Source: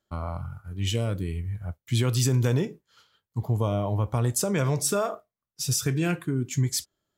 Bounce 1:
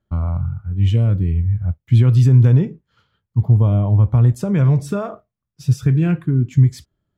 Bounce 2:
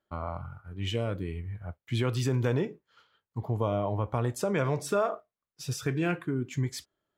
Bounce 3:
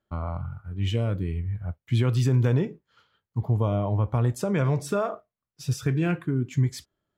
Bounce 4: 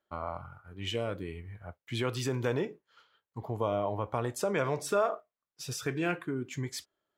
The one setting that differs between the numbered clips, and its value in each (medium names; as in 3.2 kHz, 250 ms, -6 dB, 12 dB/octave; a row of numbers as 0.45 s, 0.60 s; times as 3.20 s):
tone controls, bass: +14 dB, -6 dB, +2 dB, -14 dB